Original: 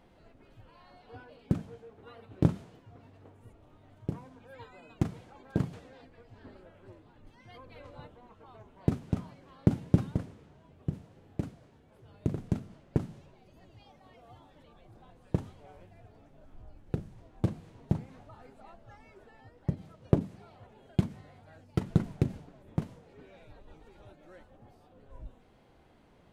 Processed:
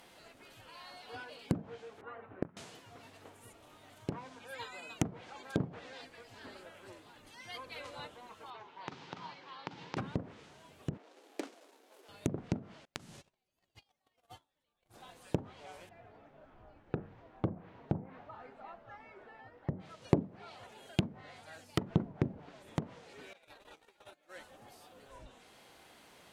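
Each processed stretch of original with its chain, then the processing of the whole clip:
2.01–2.57 s: low-pass 1.8 kHz 24 dB/octave + inverted gate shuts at -18 dBFS, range -25 dB
8.50–9.97 s: compression 5:1, threshold -37 dBFS + cabinet simulation 150–4700 Hz, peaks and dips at 230 Hz -9 dB, 630 Hz -7 dB, 900 Hz +7 dB
10.97–12.09 s: median filter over 25 samples + steep high-pass 280 Hz
12.85–14.94 s: gate -53 dBFS, range -31 dB + bass shelf 70 Hz +11.5 dB + compression 5:1, threshold -44 dBFS
15.89–19.80 s: low-pass 1.7 kHz + de-hum 92.81 Hz, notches 30 + upward compressor, threshold -59 dBFS
23.33–24.36 s: gate -53 dBFS, range -17 dB + tone controls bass -7 dB, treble -4 dB
whole clip: low-pass that closes with the level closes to 590 Hz, closed at -27.5 dBFS; tilt EQ +4 dB/octave; trim +5.5 dB

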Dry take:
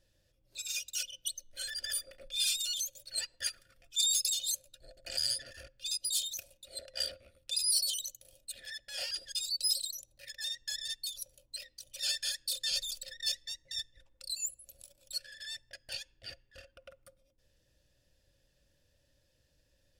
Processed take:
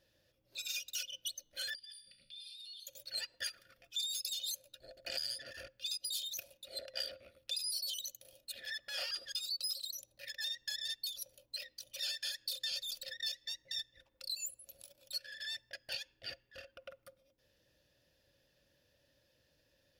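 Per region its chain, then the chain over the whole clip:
1.75–2.87 s: FFT filter 100 Hz 0 dB, 170 Hz +8 dB, 330 Hz -14 dB, 560 Hz -21 dB, 1 kHz -21 dB, 2.2 kHz -4 dB, 4.5 kHz +10 dB, 6.7 kHz -21 dB, 9.6 kHz +7 dB, 16 kHz -24 dB + compression, threshold -43 dBFS + feedback comb 64 Hz, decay 0.95 s, mix 70%
8.71–9.84 s: peaking EQ 1.2 kHz +15 dB 0.25 oct + upward compressor, threshold -51 dBFS
whole clip: high-pass 200 Hz 6 dB/octave; peaking EQ 8.2 kHz -11.5 dB 0.64 oct; compression 6:1, threshold -39 dBFS; trim +3 dB

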